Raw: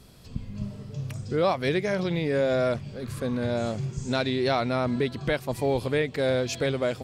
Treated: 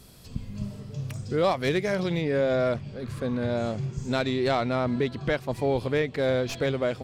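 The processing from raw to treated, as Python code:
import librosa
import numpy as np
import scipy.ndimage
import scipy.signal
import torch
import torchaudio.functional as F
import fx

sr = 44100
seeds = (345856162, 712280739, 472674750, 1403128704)

y = fx.tracing_dist(x, sr, depth_ms=0.04)
y = fx.high_shelf(y, sr, hz=6700.0, db=fx.steps((0.0, 8.0), (0.79, 2.5), (2.2, -9.5)))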